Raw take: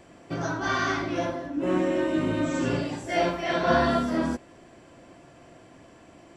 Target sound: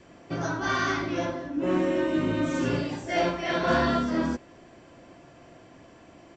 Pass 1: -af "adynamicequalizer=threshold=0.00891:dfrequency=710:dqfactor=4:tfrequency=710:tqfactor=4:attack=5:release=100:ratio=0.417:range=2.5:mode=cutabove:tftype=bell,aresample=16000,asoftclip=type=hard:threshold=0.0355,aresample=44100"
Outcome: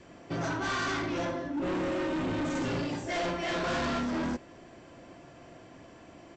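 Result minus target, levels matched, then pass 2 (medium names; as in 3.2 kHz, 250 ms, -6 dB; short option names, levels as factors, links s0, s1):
hard clipper: distortion +18 dB
-af "adynamicequalizer=threshold=0.00891:dfrequency=710:dqfactor=4:tfrequency=710:tqfactor=4:attack=5:release=100:ratio=0.417:range=2.5:mode=cutabove:tftype=bell,aresample=16000,asoftclip=type=hard:threshold=0.141,aresample=44100"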